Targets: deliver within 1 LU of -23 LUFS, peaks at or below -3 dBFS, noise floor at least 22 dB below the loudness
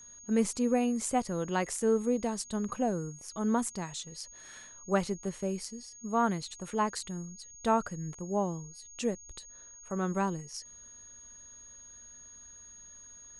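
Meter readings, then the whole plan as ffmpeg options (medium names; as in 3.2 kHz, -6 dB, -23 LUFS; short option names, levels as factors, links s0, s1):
steady tone 6.6 kHz; tone level -49 dBFS; loudness -32.5 LUFS; peak level -14.0 dBFS; loudness target -23.0 LUFS
-> -af "bandreject=f=6600:w=30"
-af "volume=2.99"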